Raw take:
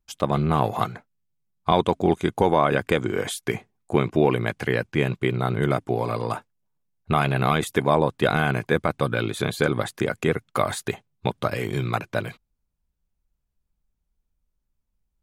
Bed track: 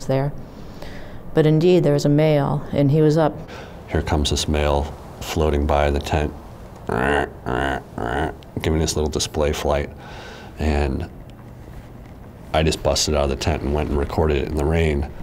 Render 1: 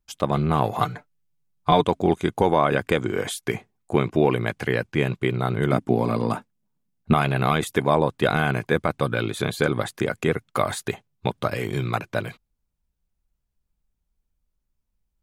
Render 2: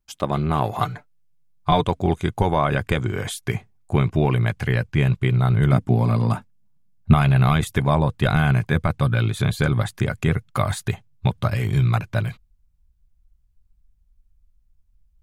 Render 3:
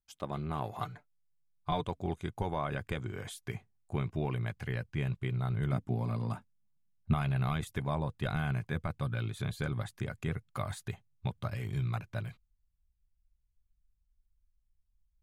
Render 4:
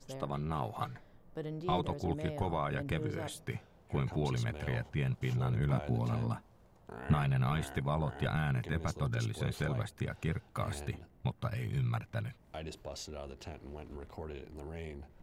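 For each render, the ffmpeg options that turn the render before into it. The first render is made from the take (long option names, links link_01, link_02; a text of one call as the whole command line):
ffmpeg -i in.wav -filter_complex "[0:a]asettb=1/sr,asplit=3[link_01][link_02][link_03];[link_01]atrim=end=0.804[link_04];[link_02]atrim=start=0.8:end=1.84,asetpts=PTS-STARTPTS,afade=type=in:duration=0.004:curve=qsin,afade=type=out:start_time=1.036:duration=0.004:curve=qsin,aecho=1:1:6.8:0.67,atrim=end_sample=45864[link_05];[link_03]atrim=start=1.836[link_06];[link_04][link_05]acrossfade=duration=0.004:curve1=hsin:curve2=qsin[link_07];[link_07][link_06]acrossfade=duration=0.004:curve1=qsin:curve2=hsin,asettb=1/sr,asplit=3[link_08][link_09][link_10];[link_08]atrim=end=5.724[link_11];[link_09]atrim=start=5.72:end=7.14,asetpts=PTS-STARTPTS,afade=type=in:duration=0.004:curve=qsin,afade=type=out:start_time=1.416:duration=0.004:curve=qsin,equalizer=frequency=220:width_type=o:width=0.96:gain=11[link_12];[link_10]atrim=start=7.136[link_13];[link_11][link_12]acrossfade=duration=0.004:curve1=hsin:curve2=qsin[link_14];[link_14][link_13]acrossfade=duration=0.004:curve1=qsin:curve2=hsin" out.wav
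ffmpeg -i in.wav -af "bandreject=frequency=480:width=12,asubboost=boost=7:cutoff=120" out.wav
ffmpeg -i in.wav -af "volume=-14.5dB" out.wav
ffmpeg -i in.wav -i bed.wav -filter_complex "[1:a]volume=-25dB[link_01];[0:a][link_01]amix=inputs=2:normalize=0" out.wav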